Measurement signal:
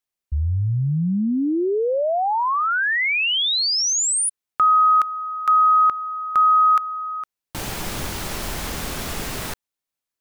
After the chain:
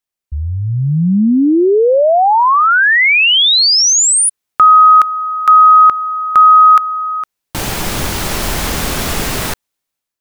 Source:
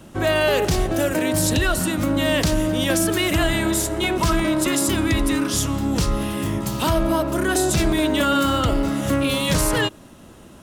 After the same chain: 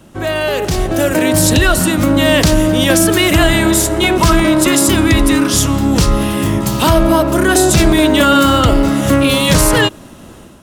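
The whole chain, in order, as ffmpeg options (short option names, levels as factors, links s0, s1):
-af "dynaudnorm=f=610:g=3:m=3.16,volume=1.12"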